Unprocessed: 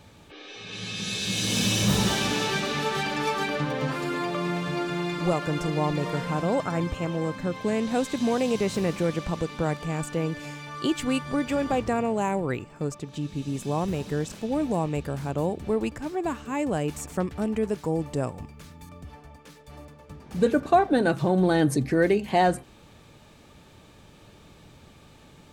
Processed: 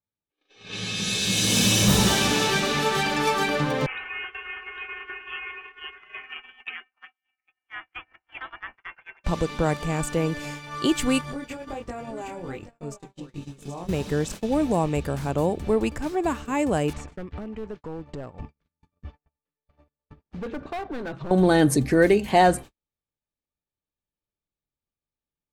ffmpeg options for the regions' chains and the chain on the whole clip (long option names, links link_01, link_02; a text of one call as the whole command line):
ffmpeg -i in.wav -filter_complex "[0:a]asettb=1/sr,asplit=3[link_01][link_02][link_03];[link_01]atrim=end=3.864[link_04];[link_02]atrim=start=3.86:end=9.24,asetpts=PTS-STARTPTS,afade=type=in:duration=0.004:curve=qsin,afade=type=out:start_time=5.376:duration=0.004:curve=qsin,highpass=frequency=1400:width=0.5412,highpass=frequency=1400:width=1.3066,aeval=exprs='(mod(17.8*val(0)+1,2)-1)/17.8':channel_layout=same,lowpass=frequency=3300:width_type=q:width=0.5098,lowpass=frequency=3300:width_type=q:width=0.6013,lowpass=frequency=3300:width_type=q:width=0.9,lowpass=frequency=3300:width_type=q:width=2.563,afreqshift=-3900[link_05];[link_03]atrim=start=9.236[link_06];[link_04][link_05]acrossfade=duration=0.004:curve1=hsin:curve2=qsin[link_07];[link_07][link_06]acrossfade=duration=0.004:curve1=qsin:curve2=hsin,asettb=1/sr,asplit=3[link_08][link_09][link_10];[link_08]atrim=end=11.214[link_11];[link_09]atrim=start=11.21:end=13.89,asetpts=PTS-STARTPTS,afade=type=in:duration=0.004:curve=qsin,afade=type=out:start_time=2.676:duration=0.004:curve=qsin,acompressor=threshold=-31dB:ratio=5:attack=3.2:release=140:knee=1:detection=peak,flanger=delay=20:depth=3.5:speed=1.3,aecho=1:1:776:0.422,atrim=end_sample=118188[link_12];[link_10]atrim=start=13.886[link_13];[link_11][link_12]acrossfade=duration=0.004:curve1=hsin:curve2=qsin[link_14];[link_14][link_13]acrossfade=duration=0.004:curve1=qsin:curve2=hsin,asettb=1/sr,asplit=3[link_15][link_16][link_17];[link_15]atrim=end=16.934[link_18];[link_16]atrim=start=16.93:end=21.31,asetpts=PTS-STARTPTS,afade=type=in:duration=0.004:curve=qsin,afade=type=out:start_time=4.376:duration=0.004:curve=qsin,lowpass=3400,asoftclip=type=hard:threshold=-21dB,acompressor=threshold=-34dB:ratio=10:attack=3.2:release=140:knee=1:detection=peak[link_19];[link_17]atrim=start=21.306[link_20];[link_18][link_19]acrossfade=duration=0.004:curve1=hsin:curve2=qsin[link_21];[link_21][link_20]acrossfade=duration=0.004:curve1=qsin:curve2=hsin,asubboost=boost=2.5:cutoff=62,agate=range=-48dB:threshold=-39dB:ratio=16:detection=peak,adynamicequalizer=threshold=0.00891:dfrequency=6500:dqfactor=0.7:tfrequency=6500:tqfactor=0.7:attack=5:release=100:ratio=0.375:range=2:mode=boostabove:tftype=highshelf,volume=4dB" out.wav